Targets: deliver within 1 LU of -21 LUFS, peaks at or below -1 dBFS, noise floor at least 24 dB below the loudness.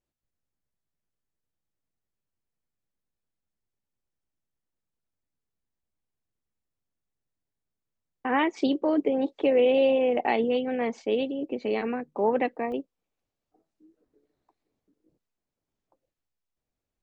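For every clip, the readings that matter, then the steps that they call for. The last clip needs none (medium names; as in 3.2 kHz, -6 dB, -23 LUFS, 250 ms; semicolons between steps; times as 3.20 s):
dropouts 1; longest dropout 1.9 ms; loudness -26.0 LUFS; peak level -12.0 dBFS; loudness target -21.0 LUFS
-> interpolate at 12.72 s, 1.9 ms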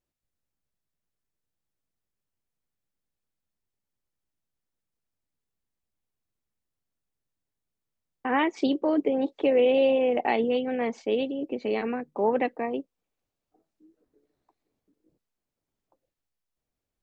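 dropouts 0; loudness -26.0 LUFS; peak level -12.0 dBFS; loudness target -21.0 LUFS
-> trim +5 dB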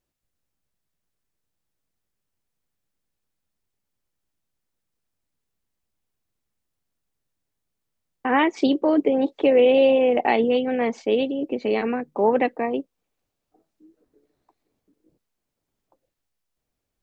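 loudness -21.0 LUFS; peak level -7.0 dBFS; noise floor -81 dBFS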